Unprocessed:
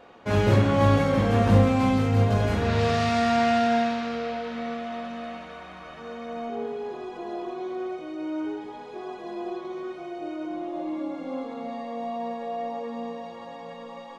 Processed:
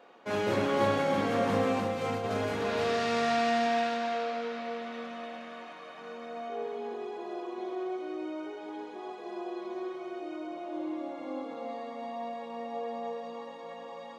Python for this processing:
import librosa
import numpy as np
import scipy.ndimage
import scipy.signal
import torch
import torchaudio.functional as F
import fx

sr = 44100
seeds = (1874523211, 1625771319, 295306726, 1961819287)

y = scipy.signal.sosfilt(scipy.signal.butter(2, 260.0, 'highpass', fs=sr, output='sos'), x)
y = fx.over_compress(y, sr, threshold_db=-28.0, ratio=-0.5, at=(1.8, 2.27))
y = y + 10.0 ** (-3.5 / 20.0) * np.pad(y, (int(297 * sr / 1000.0), 0))[:len(y)]
y = y * librosa.db_to_amplitude(-5.0)